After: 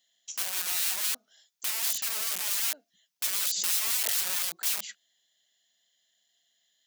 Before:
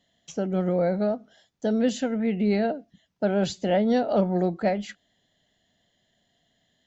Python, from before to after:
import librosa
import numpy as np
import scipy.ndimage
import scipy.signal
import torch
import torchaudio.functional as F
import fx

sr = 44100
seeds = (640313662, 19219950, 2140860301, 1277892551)

y = (np.mod(10.0 ** (26.0 / 20.0) * x + 1.0, 2.0) - 1.0) / 10.0 ** (26.0 / 20.0)
y = np.diff(y, prepend=0.0)
y = fx.pre_swell(y, sr, db_per_s=25.0, at=(3.39, 4.42))
y = y * 10.0 ** (5.5 / 20.0)